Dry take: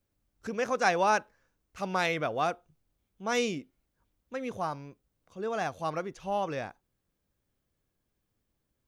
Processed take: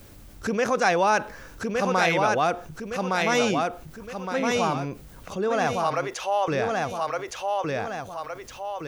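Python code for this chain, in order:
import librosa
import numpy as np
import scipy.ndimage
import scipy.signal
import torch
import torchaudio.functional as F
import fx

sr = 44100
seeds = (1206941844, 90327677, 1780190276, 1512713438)

y = fx.highpass(x, sr, hz=480.0, slope=24, at=(5.76, 6.48))
y = fx.echo_feedback(y, sr, ms=1164, feedback_pct=24, wet_db=-5.0)
y = fx.env_flatten(y, sr, amount_pct=50)
y = y * 10.0 ** (3.0 / 20.0)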